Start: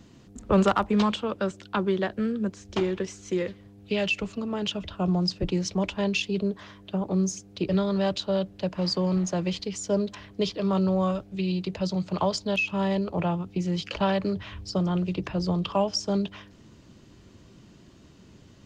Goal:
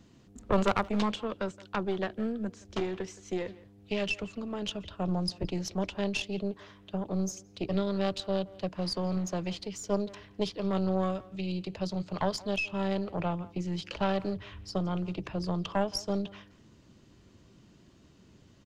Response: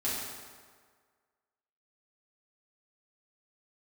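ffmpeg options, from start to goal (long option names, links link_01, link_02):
-filter_complex "[0:a]aeval=exprs='0.251*(cos(1*acos(clip(val(0)/0.251,-1,1)))-cos(1*PI/2))+0.112*(cos(2*acos(clip(val(0)/0.251,-1,1)))-cos(2*PI/2))':channel_layout=same,asplit=2[link_01][link_02];[link_02]adelay=170,highpass=300,lowpass=3400,asoftclip=type=hard:threshold=-18.5dB,volume=-19dB[link_03];[link_01][link_03]amix=inputs=2:normalize=0,volume=-6dB"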